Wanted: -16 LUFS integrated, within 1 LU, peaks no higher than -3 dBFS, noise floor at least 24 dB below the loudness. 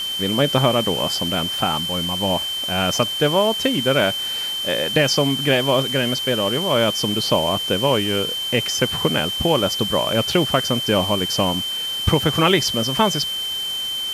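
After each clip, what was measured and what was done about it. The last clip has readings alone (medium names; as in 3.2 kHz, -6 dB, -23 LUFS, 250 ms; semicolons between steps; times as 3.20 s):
steady tone 3.1 kHz; tone level -23 dBFS; noise floor -26 dBFS; noise floor target -43 dBFS; loudness -19.0 LUFS; peak level -4.0 dBFS; loudness target -16.0 LUFS
-> band-stop 3.1 kHz, Q 30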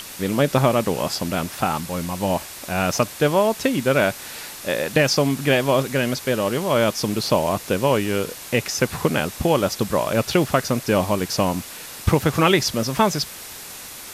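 steady tone not found; noise floor -37 dBFS; noise floor target -45 dBFS
-> noise print and reduce 8 dB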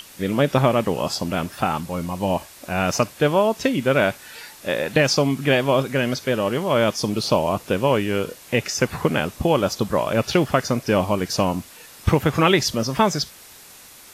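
noise floor -45 dBFS; noise floor target -46 dBFS
-> noise print and reduce 6 dB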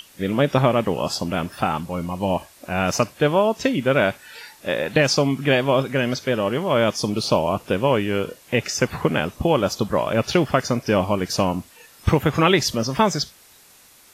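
noise floor -51 dBFS; loudness -21.5 LUFS; peak level -5.0 dBFS; loudness target -16.0 LUFS
-> trim +5.5 dB; peak limiter -3 dBFS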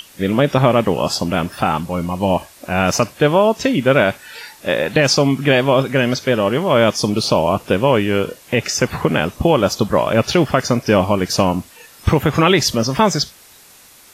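loudness -16.5 LUFS; peak level -3.0 dBFS; noise floor -45 dBFS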